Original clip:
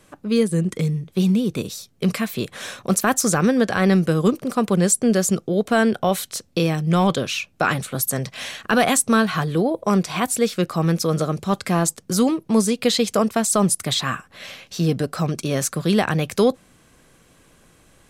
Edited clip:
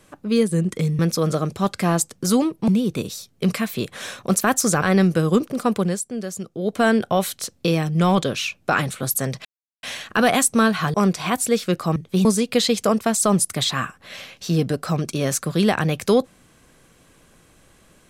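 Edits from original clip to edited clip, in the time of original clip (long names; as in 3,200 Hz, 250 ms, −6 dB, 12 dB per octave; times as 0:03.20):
0:00.99–0:01.28: swap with 0:10.86–0:12.55
0:03.42–0:03.74: remove
0:04.64–0:05.72: duck −11 dB, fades 0.30 s
0:08.37: splice in silence 0.38 s
0:09.48–0:09.84: remove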